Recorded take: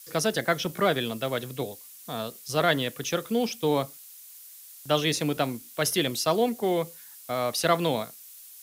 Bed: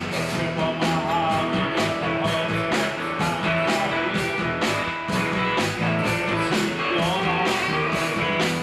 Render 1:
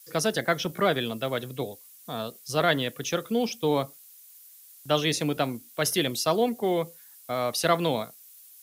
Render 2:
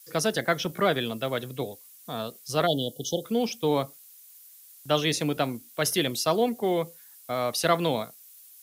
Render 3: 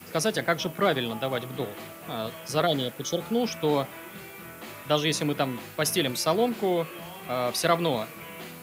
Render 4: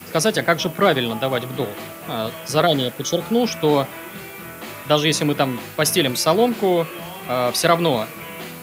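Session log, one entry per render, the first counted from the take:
broadband denoise 6 dB, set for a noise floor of −48 dBFS
0:02.67–0:03.24: time-frequency box erased 870–2,900 Hz
mix in bed −19 dB
level +7.5 dB; brickwall limiter −3 dBFS, peak gain reduction 1 dB

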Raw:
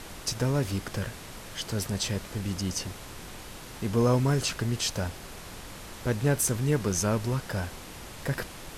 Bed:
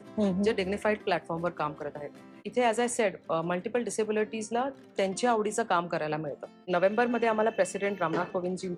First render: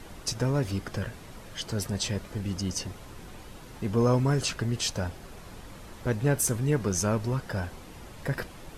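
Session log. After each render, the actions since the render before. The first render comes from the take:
broadband denoise 8 dB, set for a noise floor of −44 dBFS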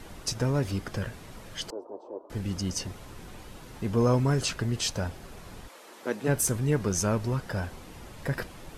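0:01.70–0:02.30: elliptic band-pass filter 310–1,000 Hz
0:05.67–0:06.27: high-pass filter 430 Hz → 190 Hz 24 dB per octave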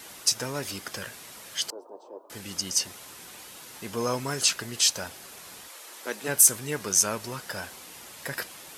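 high-pass filter 110 Hz 6 dB per octave
spectral tilt +3.5 dB per octave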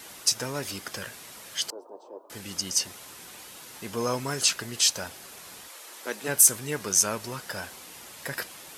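no processing that can be heard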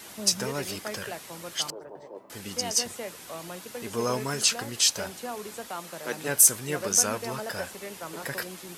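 mix in bed −10.5 dB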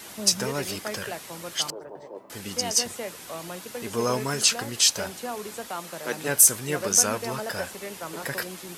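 level +2.5 dB
brickwall limiter −3 dBFS, peak gain reduction 2 dB

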